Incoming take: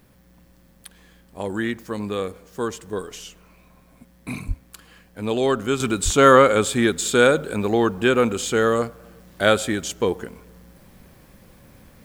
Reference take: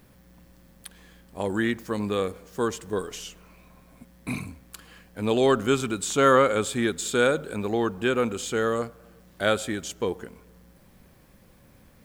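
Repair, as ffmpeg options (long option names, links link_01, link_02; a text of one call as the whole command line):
ffmpeg -i in.wav -filter_complex "[0:a]asplit=3[link_01][link_02][link_03];[link_01]afade=type=out:start_time=4.47:duration=0.02[link_04];[link_02]highpass=frequency=140:width=0.5412,highpass=frequency=140:width=1.3066,afade=type=in:start_time=4.47:duration=0.02,afade=type=out:start_time=4.59:duration=0.02[link_05];[link_03]afade=type=in:start_time=4.59:duration=0.02[link_06];[link_04][link_05][link_06]amix=inputs=3:normalize=0,asplit=3[link_07][link_08][link_09];[link_07]afade=type=out:start_time=6.04:duration=0.02[link_10];[link_08]highpass=frequency=140:width=0.5412,highpass=frequency=140:width=1.3066,afade=type=in:start_time=6.04:duration=0.02,afade=type=out:start_time=6.16:duration=0.02[link_11];[link_09]afade=type=in:start_time=6.16:duration=0.02[link_12];[link_10][link_11][link_12]amix=inputs=3:normalize=0,asetnsamples=nb_out_samples=441:pad=0,asendcmd='5.8 volume volume -6dB',volume=0dB" out.wav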